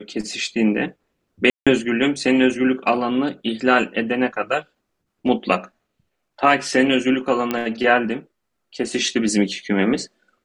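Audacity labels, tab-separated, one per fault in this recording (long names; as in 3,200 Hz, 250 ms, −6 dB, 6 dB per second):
1.500000	1.670000	drop-out 166 ms
7.510000	7.510000	click −8 dBFS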